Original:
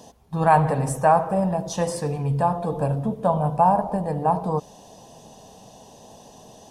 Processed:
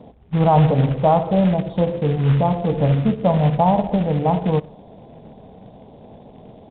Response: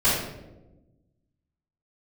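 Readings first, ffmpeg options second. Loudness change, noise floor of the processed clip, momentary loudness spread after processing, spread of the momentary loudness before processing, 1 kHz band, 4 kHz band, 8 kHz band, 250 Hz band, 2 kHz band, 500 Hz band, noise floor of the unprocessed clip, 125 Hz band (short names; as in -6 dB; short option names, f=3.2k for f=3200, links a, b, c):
+4.0 dB, -45 dBFS, 5 LU, 8 LU, -0.5 dB, +5.5 dB, under -40 dB, +7.5 dB, -2.0 dB, +3.5 dB, -48 dBFS, +7.5 dB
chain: -filter_complex "[0:a]tiltshelf=f=1.1k:g=8,aecho=1:1:60|120|180:0.0708|0.0368|0.0191,acrossover=split=810[a][b];[a]acrusher=bits=4:mode=log:mix=0:aa=0.000001[c];[b]asuperstop=centerf=2100:order=12:qfactor=1.2[d];[c][d]amix=inputs=2:normalize=0,aresample=8000,aresample=44100"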